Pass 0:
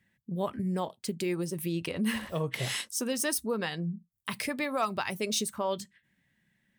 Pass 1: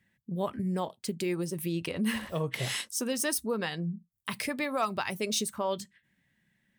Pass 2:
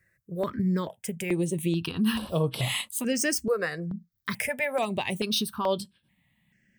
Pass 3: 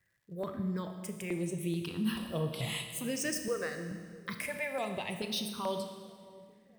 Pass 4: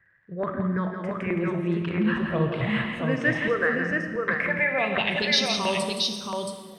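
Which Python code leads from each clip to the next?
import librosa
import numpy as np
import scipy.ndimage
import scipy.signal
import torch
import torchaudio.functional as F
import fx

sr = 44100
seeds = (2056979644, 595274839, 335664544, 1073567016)

y1 = x
y2 = fx.phaser_held(y1, sr, hz=2.3, low_hz=870.0, high_hz=6700.0)
y2 = F.gain(torch.from_numpy(y2), 6.5).numpy()
y3 = fx.dmg_crackle(y2, sr, seeds[0], per_s=190.0, level_db=-56.0)
y3 = fx.echo_wet_lowpass(y3, sr, ms=643, feedback_pct=51, hz=550.0, wet_db=-18.5)
y3 = fx.rev_schroeder(y3, sr, rt60_s=1.7, comb_ms=26, drr_db=6.0)
y3 = F.gain(torch.from_numpy(y3), -8.5).numpy()
y4 = fx.filter_sweep_lowpass(y3, sr, from_hz=1700.0, to_hz=15000.0, start_s=4.58, end_s=6.21, q=2.8)
y4 = fx.wow_flutter(y4, sr, seeds[1], rate_hz=2.1, depth_cents=26.0)
y4 = fx.echo_multitap(y4, sr, ms=(170, 676), db=(-7.0, -3.5))
y4 = F.gain(torch.from_numpy(y4), 7.5).numpy()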